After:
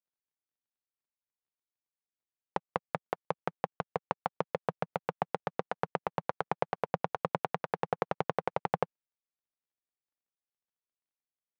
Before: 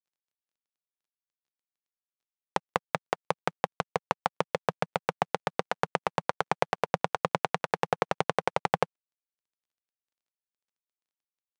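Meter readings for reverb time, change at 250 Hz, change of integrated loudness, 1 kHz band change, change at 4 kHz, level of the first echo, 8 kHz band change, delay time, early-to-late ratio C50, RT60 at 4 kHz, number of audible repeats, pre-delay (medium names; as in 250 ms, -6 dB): no reverb, -3.0 dB, -4.5 dB, -4.5 dB, -12.0 dB, no echo, under -15 dB, no echo, no reverb, no reverb, no echo, no reverb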